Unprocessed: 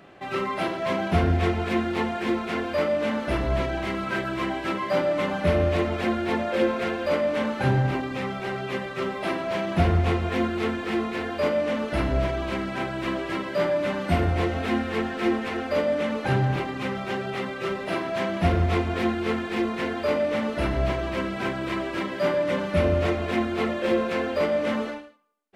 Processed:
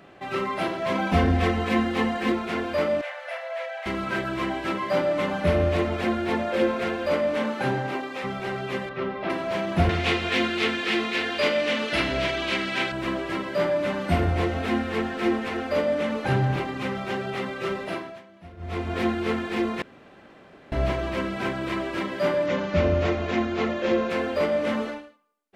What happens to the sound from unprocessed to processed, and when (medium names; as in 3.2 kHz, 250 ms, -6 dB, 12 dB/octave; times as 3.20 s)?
0.95–2.32 s: comb 3.9 ms, depth 79%
3.01–3.86 s: rippled Chebyshev high-pass 500 Hz, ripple 9 dB
7.37–8.23 s: high-pass 130 Hz -> 440 Hz
8.89–9.30 s: distance through air 240 m
9.89–12.92 s: frequency weighting D
17.78–19.01 s: dip -23.5 dB, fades 0.44 s
19.82–20.72 s: room tone
22.46–24.10 s: careless resampling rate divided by 3×, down none, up filtered